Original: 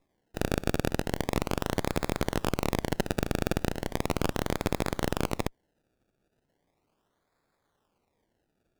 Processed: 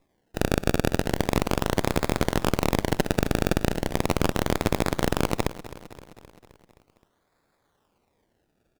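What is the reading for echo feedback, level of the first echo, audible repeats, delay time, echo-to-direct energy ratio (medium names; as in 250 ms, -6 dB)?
60%, -16.0 dB, 5, 261 ms, -14.0 dB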